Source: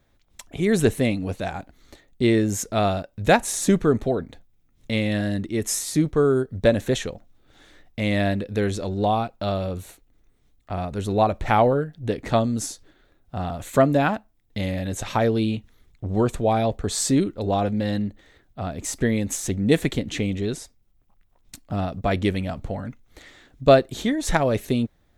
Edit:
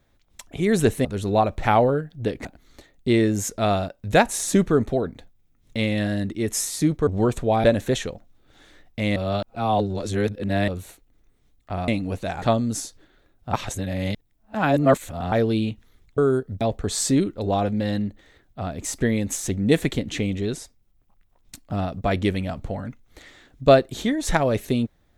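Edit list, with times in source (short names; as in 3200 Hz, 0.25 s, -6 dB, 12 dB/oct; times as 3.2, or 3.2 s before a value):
1.05–1.59 swap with 10.88–12.28
6.21–6.64 swap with 16.04–16.61
8.16–9.68 reverse
13.39–15.18 reverse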